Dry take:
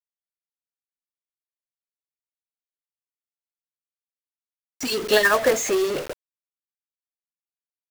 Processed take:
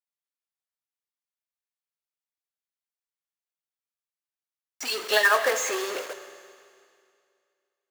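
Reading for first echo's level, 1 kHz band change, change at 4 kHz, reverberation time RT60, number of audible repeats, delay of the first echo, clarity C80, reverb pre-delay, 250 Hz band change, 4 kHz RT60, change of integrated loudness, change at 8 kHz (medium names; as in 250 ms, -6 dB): no echo, -0.5 dB, -1.5 dB, 2.3 s, no echo, no echo, 11.0 dB, 8 ms, -12.5 dB, 2.2 s, -3.0 dB, -2.5 dB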